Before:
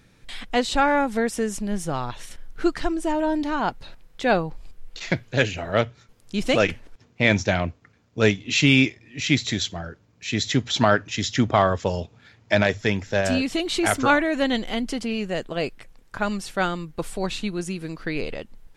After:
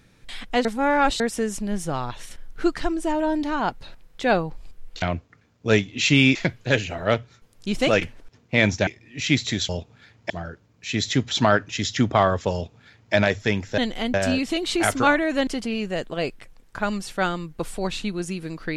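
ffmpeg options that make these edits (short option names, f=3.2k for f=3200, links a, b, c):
-filter_complex "[0:a]asplit=11[a][b][c][d][e][f][g][h][i][j][k];[a]atrim=end=0.652[l];[b]atrim=start=0.648:end=1.202,asetpts=PTS-STARTPTS,areverse[m];[c]atrim=start=1.198:end=5.022[n];[d]atrim=start=7.538:end=8.872[o];[e]atrim=start=5.018:end=7.542[p];[f]atrim=start=8.868:end=9.692[q];[g]atrim=start=11.918:end=12.532[r];[h]atrim=start=9.688:end=13.172[s];[i]atrim=start=14.498:end=14.862[t];[j]atrim=start=13.168:end=14.502[u];[k]atrim=start=14.858[v];[l][m]acrossfade=d=0.004:c1=hsin:c2=hsin[w];[w][n]acrossfade=d=0.004:c1=hsin:c2=hsin[x];[x][o]acrossfade=d=0.004:c1=hsin:c2=hsin[y];[y][p]acrossfade=d=0.004:c1=hsin:c2=hsin[z];[z][q]acrossfade=d=0.004:c1=hsin:c2=hsin[aa];[aa][r]acrossfade=d=0.004:c1=hsin:c2=hsin[ab];[ab][s]acrossfade=d=0.004:c1=hsin:c2=hsin[ac];[ac][t]acrossfade=d=0.004:c1=hsin:c2=hsin[ad];[ad][u]acrossfade=d=0.004:c1=hsin:c2=hsin[ae];[ae][v]acrossfade=d=0.004:c1=hsin:c2=hsin"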